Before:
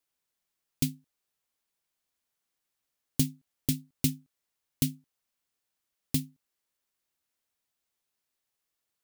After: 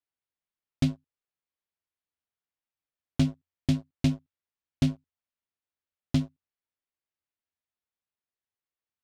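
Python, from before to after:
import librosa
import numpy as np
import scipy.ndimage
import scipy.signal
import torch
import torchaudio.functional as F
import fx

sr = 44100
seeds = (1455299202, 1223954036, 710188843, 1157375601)

y = fx.leveller(x, sr, passes=3)
y = scipy.signal.sosfilt(scipy.signal.butter(2, 3300.0, 'lowpass', fs=sr, output='sos'), y)
y = fx.peak_eq(y, sr, hz=86.0, db=10.0, octaves=0.3)
y = y * 10.0 ** (-3.0 / 20.0)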